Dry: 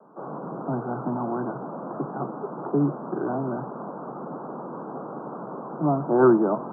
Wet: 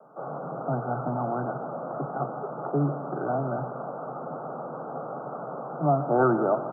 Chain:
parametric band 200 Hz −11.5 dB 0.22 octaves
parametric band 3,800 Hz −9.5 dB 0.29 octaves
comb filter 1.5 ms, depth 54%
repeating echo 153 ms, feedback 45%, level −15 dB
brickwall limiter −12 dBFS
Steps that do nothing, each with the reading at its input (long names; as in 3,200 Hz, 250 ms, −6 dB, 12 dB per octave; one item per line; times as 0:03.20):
parametric band 3,800 Hz: nothing at its input above 1,500 Hz